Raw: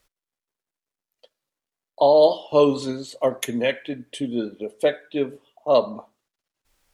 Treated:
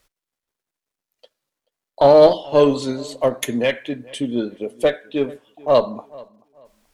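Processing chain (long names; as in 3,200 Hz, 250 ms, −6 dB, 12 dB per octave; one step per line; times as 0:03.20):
0:02.04–0:02.44: low-shelf EQ 270 Hz +11.5 dB
in parallel at −6 dB: asymmetric clip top −22.5 dBFS
on the sum: feedback echo with a low-pass in the loop 432 ms, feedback 27%, low-pass 3,200 Hz, level −23 dB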